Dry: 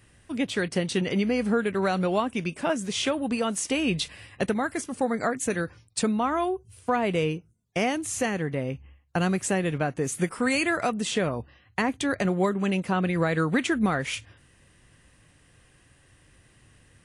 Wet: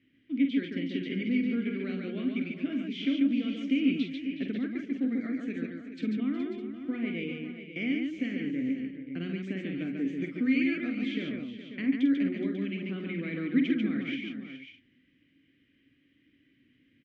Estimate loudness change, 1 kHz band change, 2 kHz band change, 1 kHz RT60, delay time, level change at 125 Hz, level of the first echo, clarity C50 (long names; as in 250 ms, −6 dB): −4.5 dB, −25.0 dB, −8.0 dB, no reverb audible, 47 ms, −9.5 dB, −7.5 dB, no reverb audible